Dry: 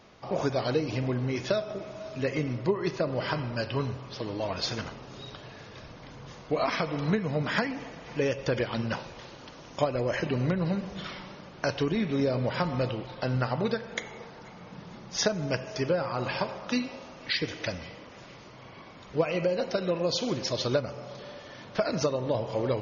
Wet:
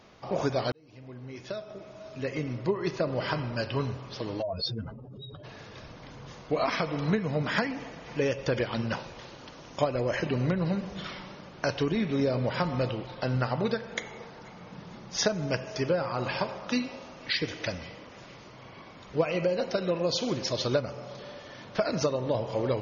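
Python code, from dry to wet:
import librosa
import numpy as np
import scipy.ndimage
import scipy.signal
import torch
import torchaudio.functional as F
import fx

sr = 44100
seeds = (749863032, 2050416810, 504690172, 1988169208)

y = fx.spec_expand(x, sr, power=2.8, at=(4.41, 5.43), fade=0.02)
y = fx.edit(y, sr, fx.fade_in_span(start_s=0.72, length_s=2.31), tone=tone)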